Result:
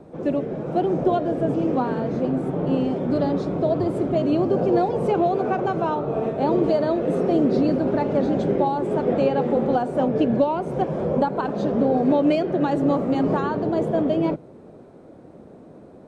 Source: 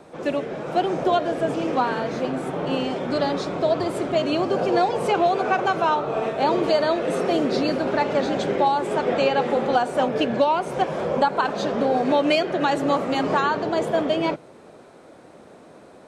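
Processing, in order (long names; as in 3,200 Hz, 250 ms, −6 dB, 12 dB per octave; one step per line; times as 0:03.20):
tilt shelving filter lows +10 dB, about 710 Hz
level −2.5 dB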